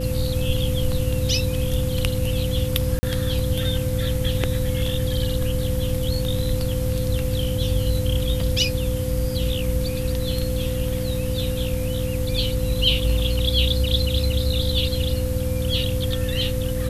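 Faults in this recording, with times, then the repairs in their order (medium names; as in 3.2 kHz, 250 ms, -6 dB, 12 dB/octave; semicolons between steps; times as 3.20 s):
hum 60 Hz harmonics 5 -27 dBFS
whine 510 Hz -28 dBFS
2.99–3.03 s: dropout 40 ms
8.41 s: dropout 3.3 ms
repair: band-stop 510 Hz, Q 30; de-hum 60 Hz, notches 5; interpolate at 2.99 s, 40 ms; interpolate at 8.41 s, 3.3 ms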